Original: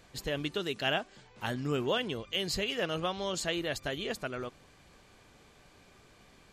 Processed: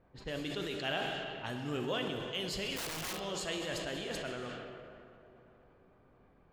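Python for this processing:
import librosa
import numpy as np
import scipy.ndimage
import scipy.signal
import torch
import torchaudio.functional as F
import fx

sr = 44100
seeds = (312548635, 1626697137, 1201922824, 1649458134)

y = fx.rev_plate(x, sr, seeds[0], rt60_s=3.8, hf_ratio=1.0, predelay_ms=0, drr_db=3.5)
y = fx.env_lowpass(y, sr, base_hz=990.0, full_db=-29.0)
y = fx.overflow_wrap(y, sr, gain_db=27.5, at=(2.76, 3.2))
y = fx.sustainer(y, sr, db_per_s=24.0)
y = y * librosa.db_to_amplitude(-6.5)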